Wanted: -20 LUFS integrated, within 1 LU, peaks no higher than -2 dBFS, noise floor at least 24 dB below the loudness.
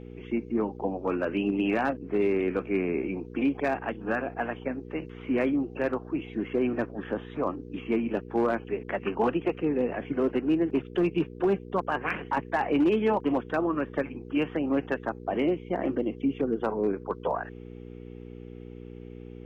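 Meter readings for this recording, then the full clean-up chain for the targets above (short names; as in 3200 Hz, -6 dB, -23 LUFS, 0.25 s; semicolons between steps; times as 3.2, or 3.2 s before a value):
clipped 0.4%; flat tops at -17.5 dBFS; hum 60 Hz; harmonics up to 480 Hz; hum level -42 dBFS; loudness -29.0 LUFS; peak -17.5 dBFS; loudness target -20.0 LUFS
-> clip repair -17.5 dBFS; de-hum 60 Hz, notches 8; gain +9 dB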